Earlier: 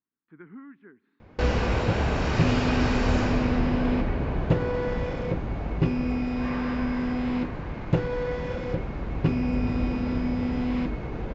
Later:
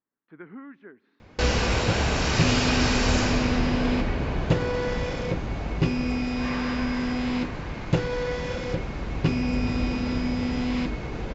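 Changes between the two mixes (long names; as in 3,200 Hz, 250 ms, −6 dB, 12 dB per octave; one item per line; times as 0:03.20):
speech: add parametric band 600 Hz +13.5 dB 0.88 octaves
master: add parametric band 7,600 Hz +13.5 dB 2.5 octaves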